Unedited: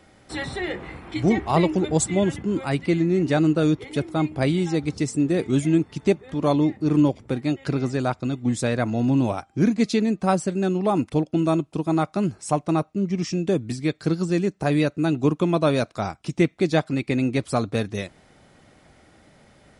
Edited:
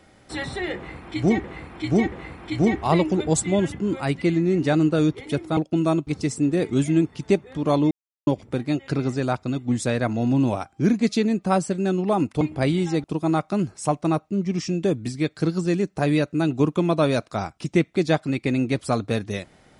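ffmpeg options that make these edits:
-filter_complex "[0:a]asplit=9[s0][s1][s2][s3][s4][s5][s6][s7][s8];[s0]atrim=end=1.442[s9];[s1]atrim=start=0.758:end=1.442[s10];[s2]atrim=start=0.758:end=4.212[s11];[s3]atrim=start=11.178:end=11.682[s12];[s4]atrim=start=4.838:end=6.68,asetpts=PTS-STARTPTS,afade=t=out:st=1.838:d=0.004:c=hsin[s13];[s5]atrim=start=6.68:end=7.04,asetpts=PTS-STARTPTS,volume=0[s14];[s6]atrim=start=7.04:end=11.182,asetpts=PTS-STARTPTS,afade=t=in:d=0.004:c=hsin[s15];[s7]atrim=start=4.208:end=4.842[s16];[s8]atrim=start=11.678[s17];[s9][s10]acrossfade=d=0.004:c1=hsin:c2=hsin[s18];[s18][s11]acrossfade=d=0.004:c1=hsin:c2=hsin[s19];[s19][s12]acrossfade=d=0.004:c1=hsin:c2=hsin[s20];[s13][s14][s15]concat=n=3:v=0:a=1[s21];[s20][s21]acrossfade=d=0.004:c1=hsin:c2=hsin[s22];[s22][s16]acrossfade=d=0.004:c1=hsin:c2=hsin[s23];[s23][s17]acrossfade=d=0.004:c1=hsin:c2=hsin"

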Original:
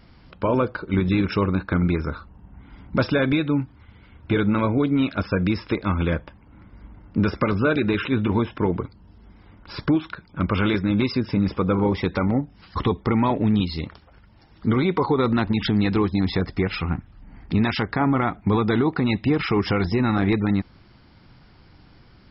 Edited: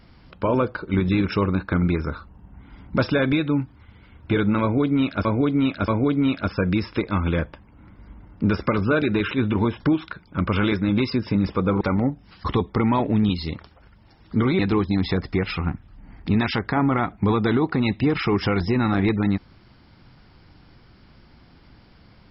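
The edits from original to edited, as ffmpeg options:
-filter_complex "[0:a]asplit=6[s0][s1][s2][s3][s4][s5];[s0]atrim=end=5.252[s6];[s1]atrim=start=4.618:end=5.252[s7];[s2]atrim=start=4.618:end=8.542[s8];[s3]atrim=start=9.818:end=11.832[s9];[s4]atrim=start=12.118:end=14.902[s10];[s5]atrim=start=15.828[s11];[s6][s7]acrossfade=d=0.004:c1=hsin:c2=hsin[s12];[s12][s8]acrossfade=d=0.004:c1=hsin:c2=hsin[s13];[s13][s9]acrossfade=d=0.004:c1=hsin:c2=hsin[s14];[s14][s10]acrossfade=d=0.004:c1=hsin:c2=hsin[s15];[s15][s11]acrossfade=d=0.004:c1=hsin:c2=hsin"

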